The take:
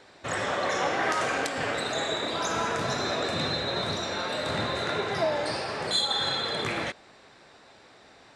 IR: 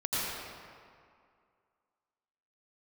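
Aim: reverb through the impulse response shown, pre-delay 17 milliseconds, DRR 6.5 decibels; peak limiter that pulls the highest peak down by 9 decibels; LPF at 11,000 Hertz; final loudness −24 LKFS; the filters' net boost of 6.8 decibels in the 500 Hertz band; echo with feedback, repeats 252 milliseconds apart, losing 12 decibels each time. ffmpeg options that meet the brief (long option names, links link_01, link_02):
-filter_complex "[0:a]lowpass=11000,equalizer=frequency=500:width_type=o:gain=8.5,alimiter=limit=-20dB:level=0:latency=1,aecho=1:1:252|504|756:0.251|0.0628|0.0157,asplit=2[link_01][link_02];[1:a]atrim=start_sample=2205,adelay=17[link_03];[link_02][link_03]afir=irnorm=-1:irlink=0,volume=-15dB[link_04];[link_01][link_04]amix=inputs=2:normalize=0,volume=3.5dB"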